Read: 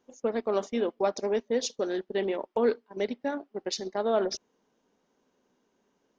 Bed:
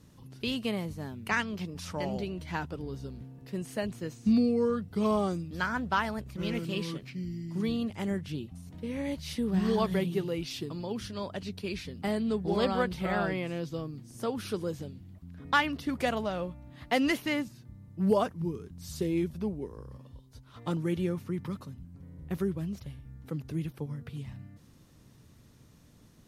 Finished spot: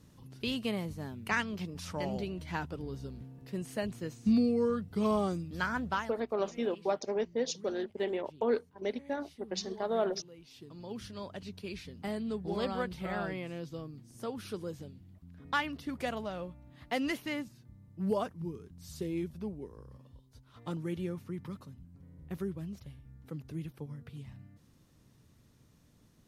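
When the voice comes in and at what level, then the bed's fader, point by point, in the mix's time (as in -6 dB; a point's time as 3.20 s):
5.85 s, -4.5 dB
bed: 5.89 s -2 dB
6.28 s -20 dB
10.41 s -20 dB
10.94 s -6 dB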